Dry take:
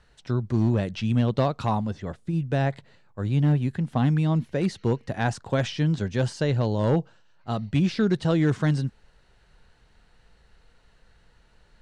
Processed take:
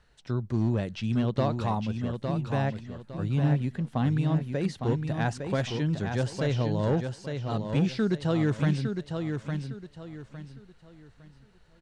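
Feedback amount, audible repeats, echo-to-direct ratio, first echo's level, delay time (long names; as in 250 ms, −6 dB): 30%, 3, −5.5 dB, −6.0 dB, 858 ms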